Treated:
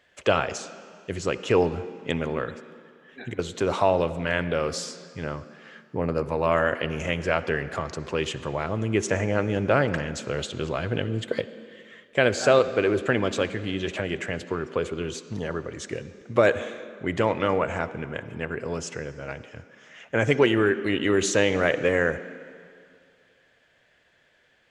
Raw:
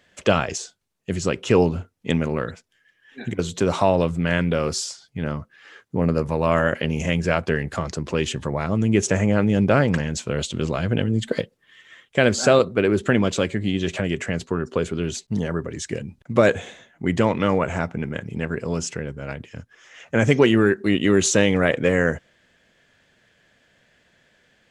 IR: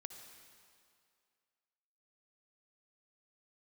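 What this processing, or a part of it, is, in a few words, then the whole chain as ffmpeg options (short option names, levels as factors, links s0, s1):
filtered reverb send: -filter_complex "[0:a]asplit=2[s0][s1];[s1]highpass=f=190:w=0.5412,highpass=f=190:w=1.3066,lowpass=4500[s2];[1:a]atrim=start_sample=2205[s3];[s2][s3]afir=irnorm=-1:irlink=0,volume=1.19[s4];[s0][s4]amix=inputs=2:normalize=0,volume=0.501"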